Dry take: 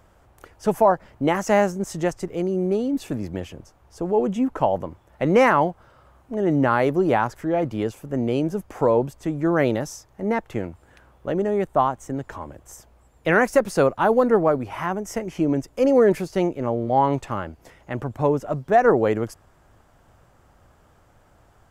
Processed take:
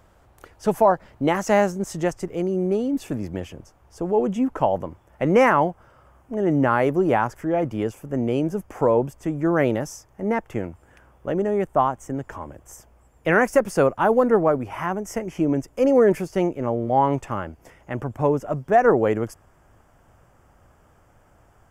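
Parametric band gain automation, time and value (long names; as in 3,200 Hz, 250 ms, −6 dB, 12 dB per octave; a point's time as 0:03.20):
parametric band 4,000 Hz 0.29 octaves
0:01.70 +1 dB
0:02.23 −6.5 dB
0:04.75 −6.5 dB
0:05.35 −13.5 dB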